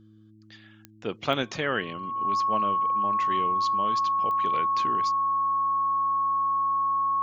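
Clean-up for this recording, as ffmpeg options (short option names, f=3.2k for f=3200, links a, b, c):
-af "adeclick=t=4,bandreject=f=107.6:t=h:w=4,bandreject=f=215.2:t=h:w=4,bandreject=f=322.8:t=h:w=4,bandreject=f=1.1k:w=30"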